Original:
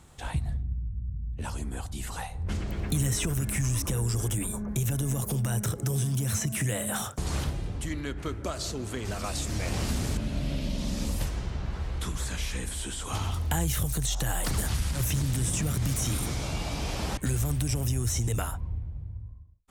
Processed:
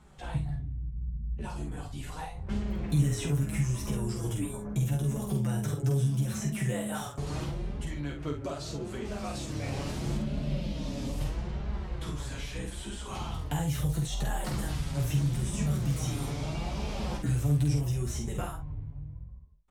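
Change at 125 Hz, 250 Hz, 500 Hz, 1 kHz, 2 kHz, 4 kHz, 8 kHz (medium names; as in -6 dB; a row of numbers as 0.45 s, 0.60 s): -1.0 dB, +0.5 dB, -0.5 dB, -2.5 dB, -5.0 dB, -6.0 dB, -9.5 dB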